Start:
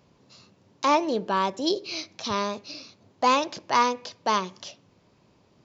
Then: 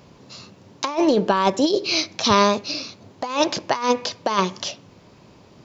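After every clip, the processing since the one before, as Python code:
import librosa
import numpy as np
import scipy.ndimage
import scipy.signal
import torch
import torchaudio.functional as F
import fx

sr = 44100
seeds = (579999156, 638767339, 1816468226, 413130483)

y = fx.over_compress(x, sr, threshold_db=-26.0, ratio=-0.5)
y = F.gain(torch.from_numpy(y), 8.5).numpy()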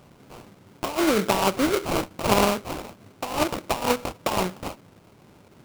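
y = fx.sample_hold(x, sr, seeds[0], rate_hz=1800.0, jitter_pct=20)
y = F.gain(torch.from_numpy(y), -3.5).numpy()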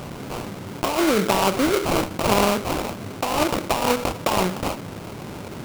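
y = fx.env_flatten(x, sr, amount_pct=50)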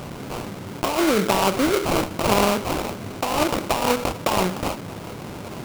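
y = x + 10.0 ** (-22.5 / 20.0) * np.pad(x, (int(1192 * sr / 1000.0), 0))[:len(x)]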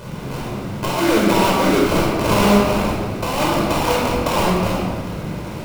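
y = fx.room_shoebox(x, sr, seeds[1], volume_m3=2000.0, walls='mixed', distance_m=5.0)
y = F.gain(torch.from_numpy(y), -4.5).numpy()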